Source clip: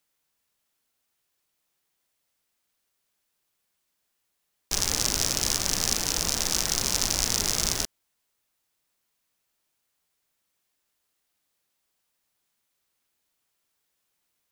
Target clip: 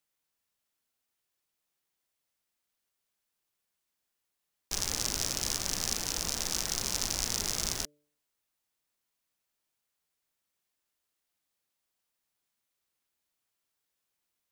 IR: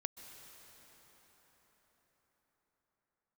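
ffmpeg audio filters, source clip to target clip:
-af "bandreject=f=147.4:t=h:w=4,bandreject=f=294.8:t=h:w=4,bandreject=f=442.2:t=h:w=4,bandreject=f=589.6:t=h:w=4,volume=-6.5dB"

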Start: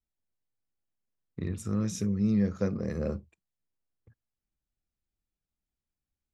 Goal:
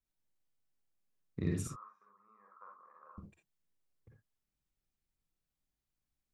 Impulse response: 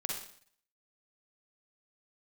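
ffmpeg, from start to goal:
-filter_complex "[0:a]asettb=1/sr,asplit=3[a][b][c];[a]atrim=end=1.674[d];[b]atrim=start=1.67:end=3.18,asetpts=PTS-STARTPTS,afade=t=in:d=0.004:c=qsin,afade=t=out:st=1.506:d=0.004:c=qsin,asuperpass=centerf=1100:order=4:qfactor=4.2[e];[c]atrim=start=3.176[f];[d][e]acrossfade=d=0.004:c1=hsin:c2=qsin[g];[g][f]acrossfade=d=0.004:c1=qsin:c2=hsin[h];[1:a]atrim=start_sample=2205,atrim=end_sample=3969[i];[h][i]afir=irnorm=-1:irlink=0,volume=-1dB"

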